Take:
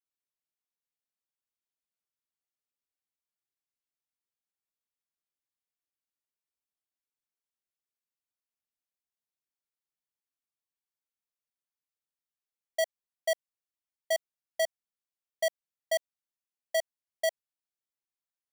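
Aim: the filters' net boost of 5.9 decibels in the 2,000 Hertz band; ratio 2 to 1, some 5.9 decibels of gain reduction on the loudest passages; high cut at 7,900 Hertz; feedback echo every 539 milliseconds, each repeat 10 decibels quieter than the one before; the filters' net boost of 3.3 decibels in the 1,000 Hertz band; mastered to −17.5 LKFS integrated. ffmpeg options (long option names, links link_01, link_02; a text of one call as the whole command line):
ffmpeg -i in.wav -af "lowpass=7900,equalizer=frequency=1000:width_type=o:gain=7,equalizer=frequency=2000:width_type=o:gain=4.5,acompressor=threshold=-31dB:ratio=2,aecho=1:1:539|1078|1617|2156:0.316|0.101|0.0324|0.0104,volume=19dB" out.wav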